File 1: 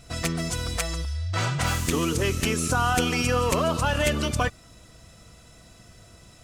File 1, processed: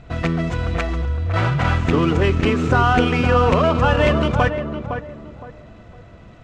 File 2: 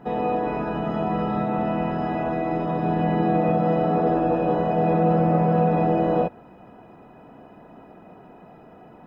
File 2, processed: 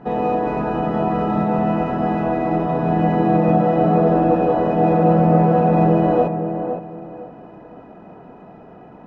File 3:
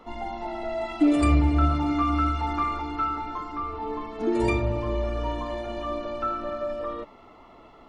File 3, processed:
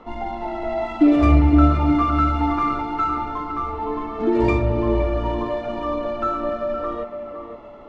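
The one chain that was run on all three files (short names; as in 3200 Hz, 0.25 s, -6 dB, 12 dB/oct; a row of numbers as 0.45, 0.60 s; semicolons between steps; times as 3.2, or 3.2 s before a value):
median filter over 9 samples; air absorption 140 m; tape echo 0.512 s, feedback 33%, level -5.5 dB, low-pass 1100 Hz; normalise peaks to -3 dBFS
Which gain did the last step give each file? +8.0, +4.5, +5.5 dB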